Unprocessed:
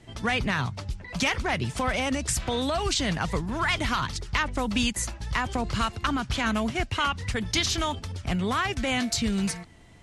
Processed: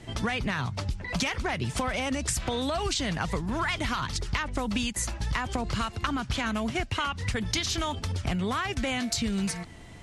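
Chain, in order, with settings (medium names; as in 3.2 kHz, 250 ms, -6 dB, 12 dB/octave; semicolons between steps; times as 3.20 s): compression 6:1, threshold -32 dBFS, peak gain reduction 11.5 dB; trim +6 dB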